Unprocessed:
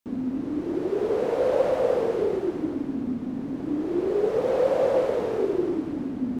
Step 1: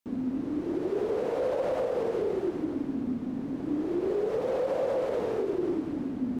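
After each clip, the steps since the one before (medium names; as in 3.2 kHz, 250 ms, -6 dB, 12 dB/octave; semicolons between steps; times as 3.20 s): peak limiter -18.5 dBFS, peak gain reduction 7.5 dB; trim -2.5 dB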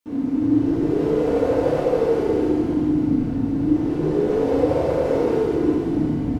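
frequency-shifting echo 291 ms, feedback 62%, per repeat -140 Hz, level -9 dB; FDN reverb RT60 1.2 s, low-frequency decay 1.25×, high-frequency decay 0.95×, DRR -6 dB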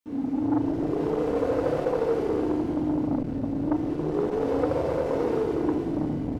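transformer saturation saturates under 490 Hz; trim -4.5 dB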